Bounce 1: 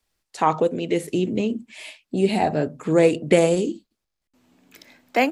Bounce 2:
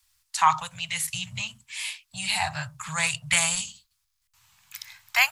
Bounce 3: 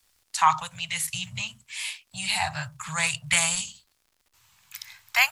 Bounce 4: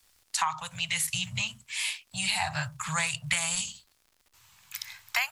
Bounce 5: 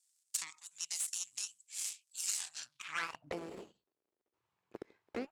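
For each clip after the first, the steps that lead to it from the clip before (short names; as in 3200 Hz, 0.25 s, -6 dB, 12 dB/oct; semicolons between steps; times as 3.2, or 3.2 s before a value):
elliptic band-stop 120–980 Hz, stop band 80 dB; high shelf 3600 Hz +9.5 dB; gain +3 dB
crackle 96/s -50 dBFS
compressor 16:1, threshold -26 dBFS, peak gain reduction 14 dB; gain +2 dB
added harmonics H 3 -13 dB, 4 -13 dB, 6 -10 dB, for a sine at -8.5 dBFS; band-pass sweep 7800 Hz -> 390 Hz, 2.54–3.4; gain +4.5 dB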